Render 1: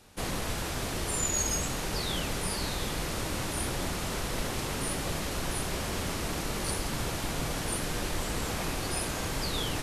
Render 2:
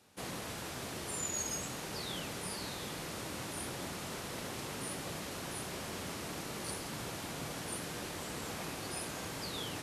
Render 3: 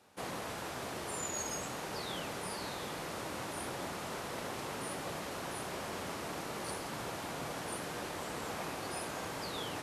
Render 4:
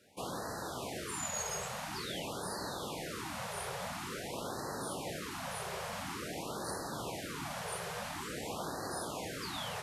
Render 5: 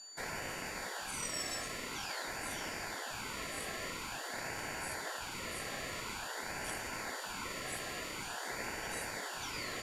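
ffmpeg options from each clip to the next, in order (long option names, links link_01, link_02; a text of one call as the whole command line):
ffmpeg -i in.wav -af "highpass=110,volume=-7.5dB" out.wav
ffmpeg -i in.wav -af "equalizer=frequency=840:width=0.47:gain=7.5,volume=-3dB" out.wav
ffmpeg -i in.wav -af "afftfilt=real='re*(1-between(b*sr/1024,260*pow(2800/260,0.5+0.5*sin(2*PI*0.48*pts/sr))/1.41,260*pow(2800/260,0.5+0.5*sin(2*PI*0.48*pts/sr))*1.41))':imag='im*(1-between(b*sr/1024,260*pow(2800/260,0.5+0.5*sin(2*PI*0.48*pts/sr))/1.41,260*pow(2800/260,0.5+0.5*sin(2*PI*0.48*pts/sr))*1.41))':win_size=1024:overlap=0.75,volume=1dB" out.wav
ffmpeg -i in.wav -af "aeval=exprs='val(0)+0.00398*sin(2*PI*5800*n/s)':channel_layout=same,aeval=exprs='val(0)*sin(2*PI*1200*n/s)':channel_layout=same,volume=1.5dB" out.wav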